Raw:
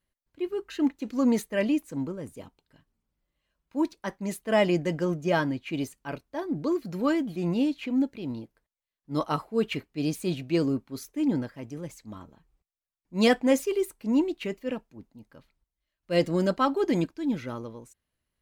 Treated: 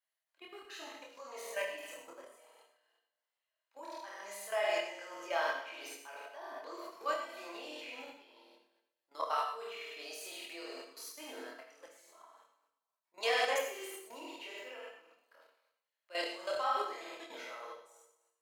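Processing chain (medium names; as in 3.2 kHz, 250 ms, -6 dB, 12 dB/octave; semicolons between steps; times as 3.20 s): high-pass 630 Hz 24 dB/octave; on a send: flutter echo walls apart 8.5 m, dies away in 0.93 s; on the sum: level held to a coarse grid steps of 15 dB; chorus voices 6, 0.62 Hz, delay 25 ms, depth 1.6 ms; gated-style reverb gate 140 ms flat, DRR 4 dB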